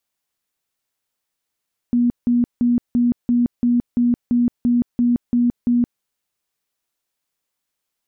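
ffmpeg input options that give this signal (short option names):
-f lavfi -i "aevalsrc='0.224*sin(2*PI*241*mod(t,0.34))*lt(mod(t,0.34),41/241)':d=4.08:s=44100"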